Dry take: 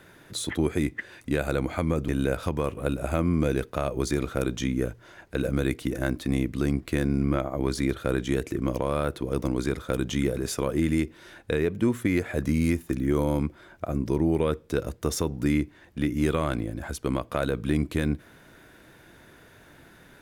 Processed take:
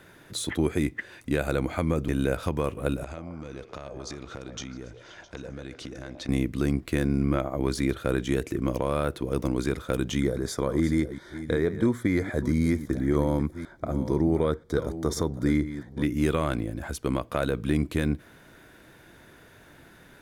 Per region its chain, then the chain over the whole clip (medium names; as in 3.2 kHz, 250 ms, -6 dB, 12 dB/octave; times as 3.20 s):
3.04–6.29 s: compression, threshold -35 dBFS + resonant low-pass 5.7 kHz, resonance Q 2 + repeats whose band climbs or falls 132 ms, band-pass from 620 Hz, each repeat 0.7 oct, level -4 dB
10.20–16.03 s: chunks repeated in reverse 493 ms, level -12 dB + Butterworth band-stop 2.7 kHz, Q 3 + treble shelf 9.4 kHz -9.5 dB
whole clip: none